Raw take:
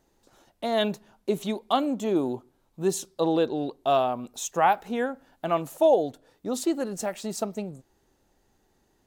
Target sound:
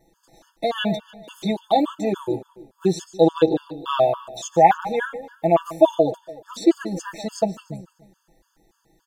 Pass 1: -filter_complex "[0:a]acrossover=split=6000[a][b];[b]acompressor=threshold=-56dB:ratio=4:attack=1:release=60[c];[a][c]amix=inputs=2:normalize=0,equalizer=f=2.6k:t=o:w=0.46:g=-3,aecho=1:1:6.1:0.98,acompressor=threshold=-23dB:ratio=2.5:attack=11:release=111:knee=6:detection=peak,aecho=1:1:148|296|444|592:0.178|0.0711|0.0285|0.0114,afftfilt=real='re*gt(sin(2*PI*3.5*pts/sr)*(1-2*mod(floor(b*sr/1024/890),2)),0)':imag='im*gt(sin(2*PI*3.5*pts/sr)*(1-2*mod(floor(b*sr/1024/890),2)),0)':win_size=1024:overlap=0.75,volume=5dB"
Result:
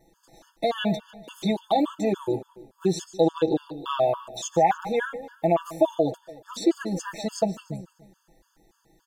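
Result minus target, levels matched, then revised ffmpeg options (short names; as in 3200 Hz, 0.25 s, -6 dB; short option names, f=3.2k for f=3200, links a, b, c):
compressor: peak gain reduction +9 dB
-filter_complex "[0:a]acrossover=split=6000[a][b];[b]acompressor=threshold=-56dB:ratio=4:attack=1:release=60[c];[a][c]amix=inputs=2:normalize=0,equalizer=f=2.6k:t=o:w=0.46:g=-3,aecho=1:1:6.1:0.98,aecho=1:1:148|296|444|592:0.178|0.0711|0.0285|0.0114,afftfilt=real='re*gt(sin(2*PI*3.5*pts/sr)*(1-2*mod(floor(b*sr/1024/890),2)),0)':imag='im*gt(sin(2*PI*3.5*pts/sr)*(1-2*mod(floor(b*sr/1024/890),2)),0)':win_size=1024:overlap=0.75,volume=5dB"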